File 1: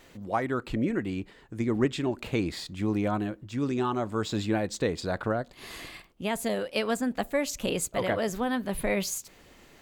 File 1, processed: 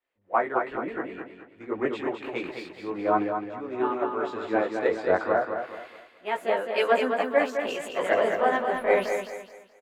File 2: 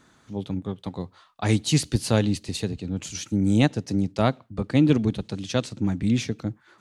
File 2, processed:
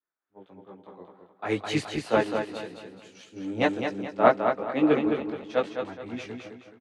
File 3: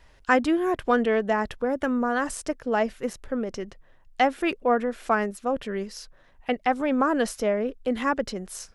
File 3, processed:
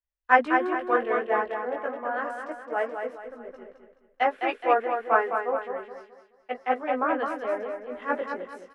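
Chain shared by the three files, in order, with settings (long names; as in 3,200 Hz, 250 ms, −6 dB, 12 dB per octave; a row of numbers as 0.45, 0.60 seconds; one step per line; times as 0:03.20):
three-way crossover with the lows and the highs turned down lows −24 dB, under 350 Hz, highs −22 dB, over 2,500 Hz
multi-voice chorus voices 2, 0.29 Hz, delay 19 ms, depth 3.3 ms
on a send: repeating echo 213 ms, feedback 56%, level −3.5 dB
on the sum: multiband upward and downward expander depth 100%
loudness normalisation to −27 LKFS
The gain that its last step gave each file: +7.5, +4.0, +1.5 decibels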